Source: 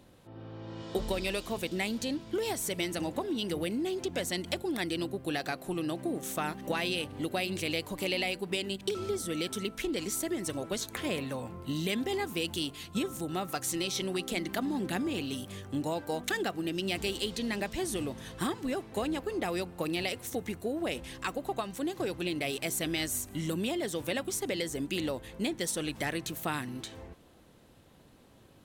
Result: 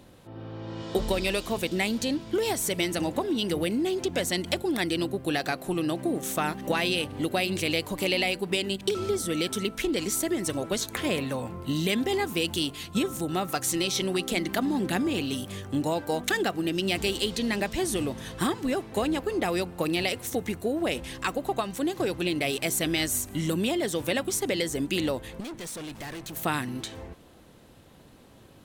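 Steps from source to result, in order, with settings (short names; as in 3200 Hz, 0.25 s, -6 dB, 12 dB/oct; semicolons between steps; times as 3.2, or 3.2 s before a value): 25.4–26.36 tube stage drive 41 dB, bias 0.5; gain +5.5 dB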